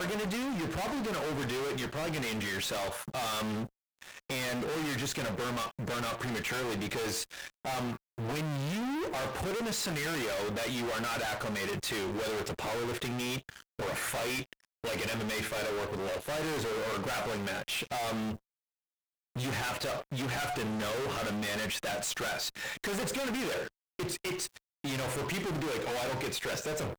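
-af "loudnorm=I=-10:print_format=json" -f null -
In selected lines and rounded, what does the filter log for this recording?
"input_i" : "-34.3",
"input_tp" : "-28.3",
"input_lra" : "1.4",
"input_thresh" : "-44.4",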